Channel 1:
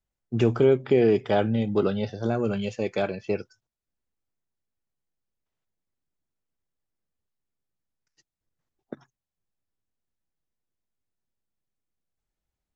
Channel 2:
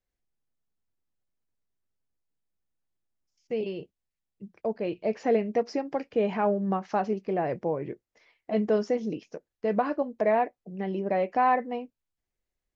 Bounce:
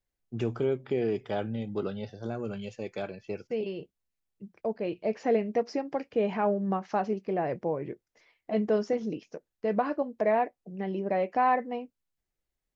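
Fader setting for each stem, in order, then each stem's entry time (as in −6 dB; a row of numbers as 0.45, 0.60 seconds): −9.0, −1.5 decibels; 0.00, 0.00 seconds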